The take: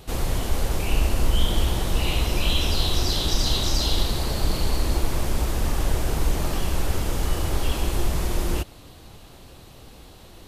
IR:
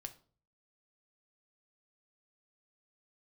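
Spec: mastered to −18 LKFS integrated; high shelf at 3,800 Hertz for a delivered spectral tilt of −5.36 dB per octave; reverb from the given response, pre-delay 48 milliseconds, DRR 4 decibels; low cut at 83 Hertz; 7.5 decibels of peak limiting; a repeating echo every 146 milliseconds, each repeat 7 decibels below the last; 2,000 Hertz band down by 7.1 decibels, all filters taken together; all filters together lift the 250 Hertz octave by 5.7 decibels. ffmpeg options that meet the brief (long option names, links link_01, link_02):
-filter_complex "[0:a]highpass=83,equalizer=frequency=250:width_type=o:gain=8,equalizer=frequency=2000:width_type=o:gain=-8.5,highshelf=frequency=3800:gain=-4.5,alimiter=limit=-21dB:level=0:latency=1,aecho=1:1:146|292|438|584|730:0.447|0.201|0.0905|0.0407|0.0183,asplit=2[link_01][link_02];[1:a]atrim=start_sample=2205,adelay=48[link_03];[link_02][link_03]afir=irnorm=-1:irlink=0,volume=0.5dB[link_04];[link_01][link_04]amix=inputs=2:normalize=0,volume=10dB"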